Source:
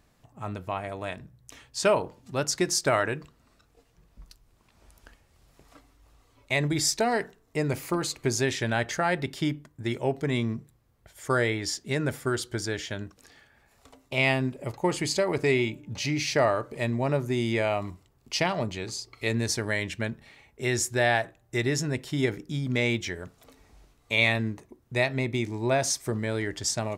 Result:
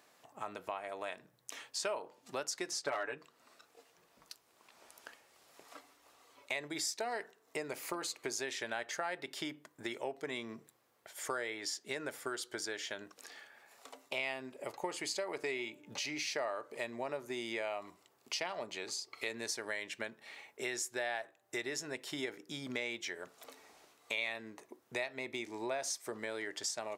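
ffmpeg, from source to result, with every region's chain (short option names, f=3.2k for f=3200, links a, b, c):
-filter_complex "[0:a]asettb=1/sr,asplit=3[a][b][c];[a]atrim=end=2.714[d];[b]atrim=start=2.71:end=3.18,asetpts=PTS-STARTPTS,afade=t=in:d=0.004:c=qsin,afade=t=out:st=0.466:d=0.004:c=qsin,aemphasis=mode=reproduction:type=50kf,aecho=1:1:7:0.91,atrim=end_sample=20727,aeval=exprs='clip(val(0),-1,0.178)':c=same[e];[c]atrim=start=3.176[f];[d][e]acrossfade=d=0.004:c1=hsin:c2=qsin[g];[g][f]acrossfade=d=0.004:c1=qsin:c2=hsin,highpass=450,acompressor=threshold=-43dB:ratio=3,volume=3dB"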